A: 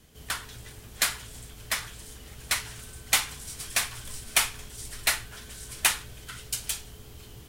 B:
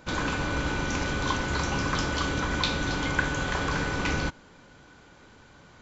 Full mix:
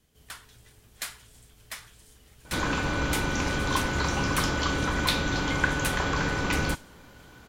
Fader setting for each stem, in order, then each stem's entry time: -10.5, +1.0 dB; 0.00, 2.45 s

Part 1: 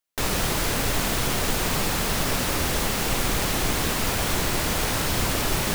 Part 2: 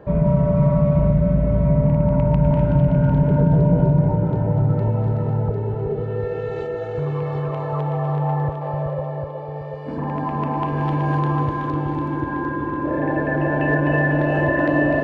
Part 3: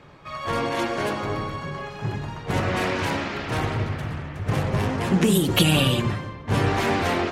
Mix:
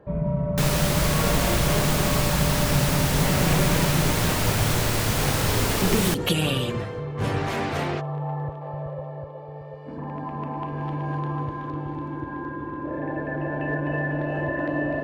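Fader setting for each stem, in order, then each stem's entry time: -0.5, -8.0, -5.0 dB; 0.40, 0.00, 0.70 s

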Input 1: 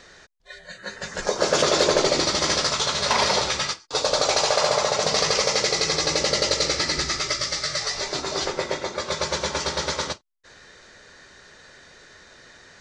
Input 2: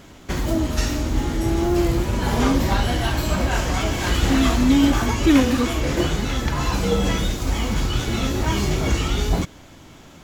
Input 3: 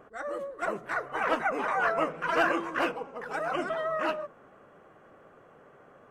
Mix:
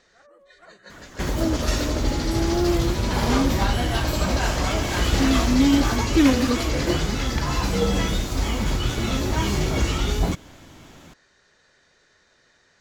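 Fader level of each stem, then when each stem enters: -12.0, -1.5, -19.0 dB; 0.00, 0.90, 0.00 s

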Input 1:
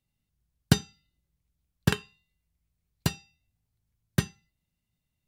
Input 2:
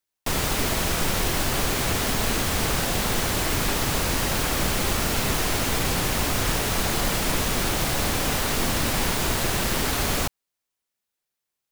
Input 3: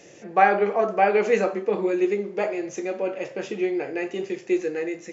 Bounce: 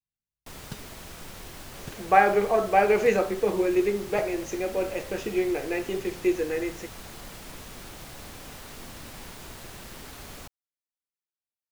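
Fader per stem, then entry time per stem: -19.0, -18.5, -1.0 dB; 0.00, 0.20, 1.75 s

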